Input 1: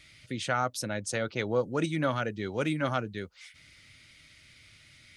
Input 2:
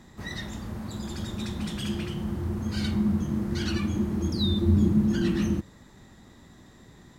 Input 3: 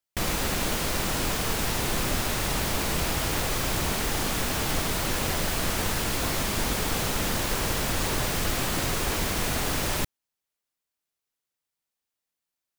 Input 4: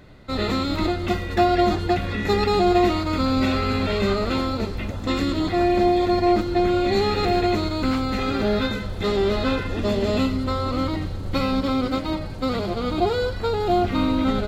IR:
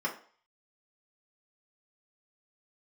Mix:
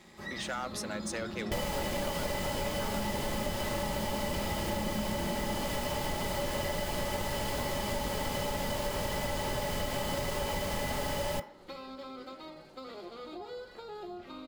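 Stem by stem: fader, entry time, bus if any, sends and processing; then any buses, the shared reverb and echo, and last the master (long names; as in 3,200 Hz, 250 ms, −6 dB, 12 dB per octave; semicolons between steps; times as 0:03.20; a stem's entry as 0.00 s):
−9.5 dB, 0.00 s, no bus, no send, high-pass filter 400 Hz; leveller curve on the samples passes 2
−0.5 dB, 0.00 s, bus A, send −9.5 dB, no processing
+1.0 dB, 1.35 s, no bus, send −10.5 dB, hollow resonant body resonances 570/860/2,000/3,000 Hz, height 12 dB
−13.5 dB, 0.35 s, bus A, send −17 dB, no processing
bus A: 0.0 dB, high-pass filter 270 Hz 12 dB per octave; downward compressor, threshold −39 dBFS, peak gain reduction 14.5 dB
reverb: on, RT60 0.45 s, pre-delay 3 ms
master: downward compressor 4 to 1, threshold −32 dBFS, peak gain reduction 12.5 dB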